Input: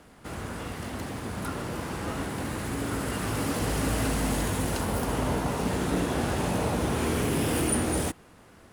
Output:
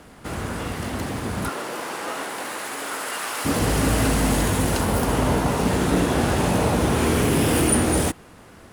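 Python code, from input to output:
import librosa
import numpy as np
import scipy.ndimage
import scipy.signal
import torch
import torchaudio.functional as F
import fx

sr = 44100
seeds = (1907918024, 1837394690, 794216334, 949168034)

y = fx.highpass(x, sr, hz=fx.line((1.48, 380.0), (3.44, 830.0)), slope=12, at=(1.48, 3.44), fade=0.02)
y = y * librosa.db_to_amplitude(7.0)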